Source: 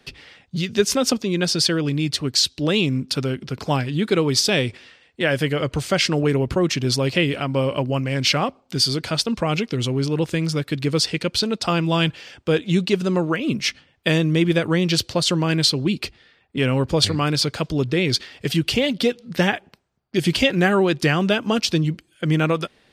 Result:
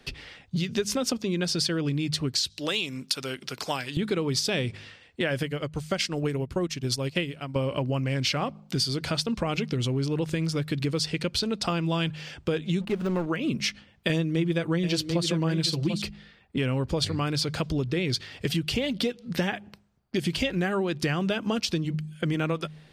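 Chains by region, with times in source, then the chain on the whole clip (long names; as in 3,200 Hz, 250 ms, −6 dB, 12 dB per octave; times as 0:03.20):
0:02.50–0:03.97: high-pass filter 910 Hz 6 dB per octave + high-shelf EQ 4,700 Hz +7.5 dB
0:05.43–0:07.56: high-shelf EQ 5,600 Hz +6.5 dB + expander for the loud parts 2.5 to 1, over −28 dBFS
0:12.81–0:13.26: parametric band 1,700 Hz +7.5 dB 2.2 octaves + de-essing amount 90% + slack as between gear wheels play −25.5 dBFS
0:14.09–0:16.02: comb filter 6 ms, depth 77% + single-tap delay 740 ms −9.5 dB
whole clip: low-shelf EQ 94 Hz +8 dB; hum removal 51.37 Hz, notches 4; downward compressor 4 to 1, threshold −25 dBFS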